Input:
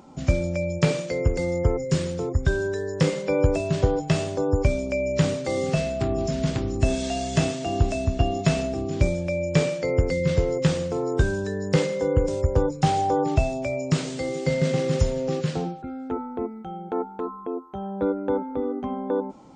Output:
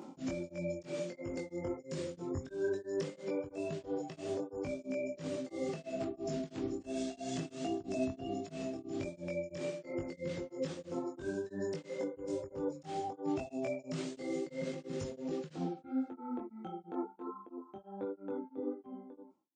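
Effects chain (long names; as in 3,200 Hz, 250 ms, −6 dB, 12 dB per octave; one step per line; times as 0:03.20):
fade-out on the ending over 6.21 s
high-pass filter 160 Hz 12 dB per octave
downward compressor 8 to 1, threshold −34 dBFS, peak gain reduction 17.5 dB
parametric band 330 Hz +8 dB 0.83 octaves
notch filter 440 Hz, Q 12
brickwall limiter −27.5 dBFS, peak gain reduction 10.5 dB
multi-voice chorus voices 4, 1.4 Hz, delay 21 ms, depth 3 ms
tremolo along a rectified sine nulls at 3 Hz
level +2.5 dB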